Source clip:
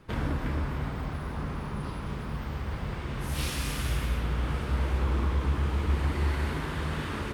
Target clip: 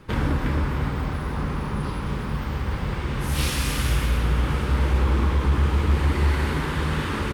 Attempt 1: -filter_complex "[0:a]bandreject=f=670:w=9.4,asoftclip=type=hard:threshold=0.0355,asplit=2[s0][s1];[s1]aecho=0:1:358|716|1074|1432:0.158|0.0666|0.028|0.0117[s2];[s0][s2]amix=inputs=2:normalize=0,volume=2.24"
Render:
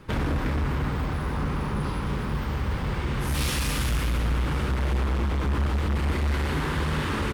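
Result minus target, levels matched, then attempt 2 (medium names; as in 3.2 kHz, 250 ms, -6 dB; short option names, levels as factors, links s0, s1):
hard clipper: distortion +18 dB
-filter_complex "[0:a]bandreject=f=670:w=9.4,asoftclip=type=hard:threshold=0.0944,asplit=2[s0][s1];[s1]aecho=0:1:358|716|1074|1432:0.158|0.0666|0.028|0.0117[s2];[s0][s2]amix=inputs=2:normalize=0,volume=2.24"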